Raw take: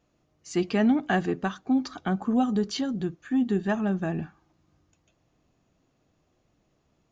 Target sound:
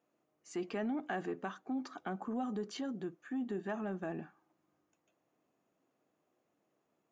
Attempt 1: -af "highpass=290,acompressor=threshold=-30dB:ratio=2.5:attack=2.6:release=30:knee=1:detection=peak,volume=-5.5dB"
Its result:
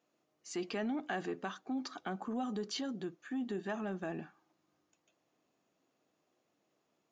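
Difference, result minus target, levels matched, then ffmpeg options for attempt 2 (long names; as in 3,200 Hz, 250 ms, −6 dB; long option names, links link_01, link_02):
4,000 Hz band +6.5 dB
-af "highpass=290,equalizer=frequency=4500:width=0.86:gain=-9.5,acompressor=threshold=-30dB:ratio=2.5:attack=2.6:release=30:knee=1:detection=peak,volume=-5.5dB"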